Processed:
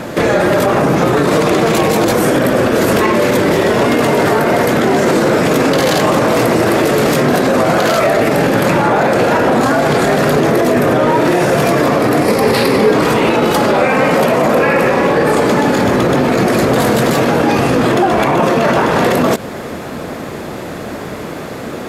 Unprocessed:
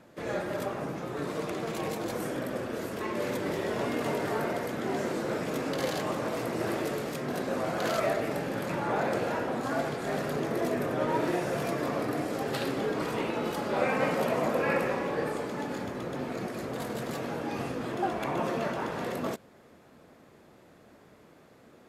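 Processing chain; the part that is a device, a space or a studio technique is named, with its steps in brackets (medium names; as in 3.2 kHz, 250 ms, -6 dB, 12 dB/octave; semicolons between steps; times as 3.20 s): loud club master (compression 2:1, threshold -35 dBFS, peak gain reduction 7.5 dB; hard clipper -24.5 dBFS, distortion -39 dB; loudness maximiser +34.5 dB); 12.23–12.91 s: rippled EQ curve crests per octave 0.89, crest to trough 7 dB; trim -3 dB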